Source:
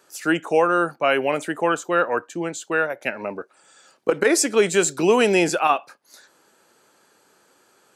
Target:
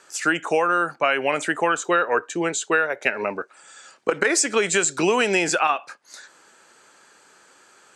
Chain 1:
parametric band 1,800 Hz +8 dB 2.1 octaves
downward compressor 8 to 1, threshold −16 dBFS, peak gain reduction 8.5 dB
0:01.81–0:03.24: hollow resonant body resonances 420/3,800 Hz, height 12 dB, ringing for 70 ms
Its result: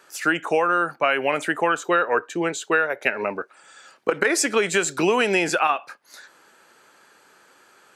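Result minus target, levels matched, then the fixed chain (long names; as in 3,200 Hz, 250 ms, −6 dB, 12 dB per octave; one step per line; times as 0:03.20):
8,000 Hz band −4.0 dB
low-pass with resonance 7,800 Hz, resonance Q 2.1
parametric band 1,800 Hz +8 dB 2.1 octaves
downward compressor 8 to 1, threshold −16 dBFS, peak gain reduction 9 dB
0:01.81–0:03.24: hollow resonant body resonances 420/3,800 Hz, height 12 dB, ringing for 70 ms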